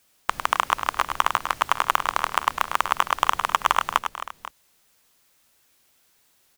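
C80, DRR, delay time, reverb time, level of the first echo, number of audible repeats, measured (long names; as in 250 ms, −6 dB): no reverb audible, no reverb audible, 103 ms, no reverb audible, −8.0 dB, 3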